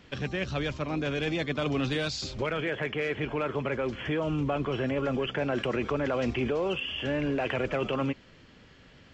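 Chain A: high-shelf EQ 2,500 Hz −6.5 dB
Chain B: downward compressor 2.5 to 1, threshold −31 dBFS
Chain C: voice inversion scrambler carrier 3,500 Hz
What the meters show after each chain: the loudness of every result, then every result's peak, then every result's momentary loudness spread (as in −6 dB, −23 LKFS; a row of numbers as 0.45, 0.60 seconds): −31.0, −34.0, −27.0 LKFS; −18.0, −20.0, −16.5 dBFS; 3, 2, 4 LU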